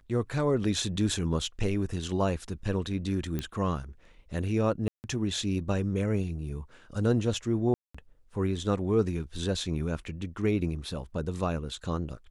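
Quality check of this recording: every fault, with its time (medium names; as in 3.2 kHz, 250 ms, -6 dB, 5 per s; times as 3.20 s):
3.39 s: pop -18 dBFS
4.88–5.04 s: dropout 159 ms
7.74–7.95 s: dropout 205 ms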